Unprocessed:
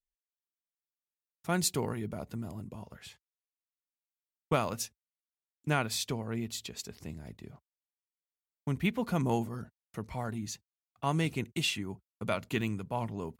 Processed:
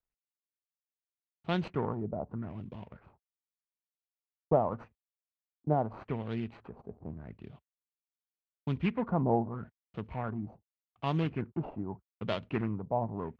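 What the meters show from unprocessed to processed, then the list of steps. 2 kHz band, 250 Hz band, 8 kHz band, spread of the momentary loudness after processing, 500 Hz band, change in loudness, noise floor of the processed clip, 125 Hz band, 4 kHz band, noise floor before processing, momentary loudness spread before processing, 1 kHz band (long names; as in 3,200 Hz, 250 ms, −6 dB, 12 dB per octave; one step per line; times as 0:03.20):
−7.5 dB, 0.0 dB, below −35 dB, 16 LU, +2.5 dB, −0.5 dB, below −85 dBFS, 0.0 dB, −11.0 dB, below −85 dBFS, 15 LU, +1.0 dB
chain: running median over 25 samples
auto-filter low-pass sine 0.83 Hz 700–3,400 Hz
high-shelf EQ 8,300 Hz −3.5 dB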